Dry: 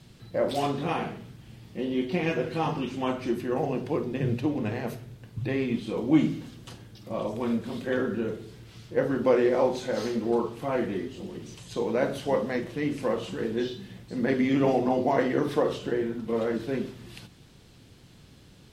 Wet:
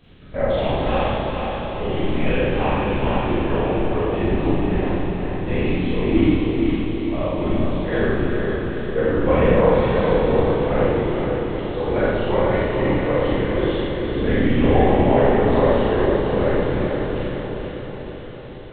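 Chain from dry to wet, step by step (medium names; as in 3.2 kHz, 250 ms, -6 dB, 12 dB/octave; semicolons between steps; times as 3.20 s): vibrato 1.3 Hz 74 cents; LPC vocoder at 8 kHz whisper; echo that smears into a reverb 459 ms, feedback 60%, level -4 dB; Schroeder reverb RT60 1.4 s, combs from 30 ms, DRR -6.5 dB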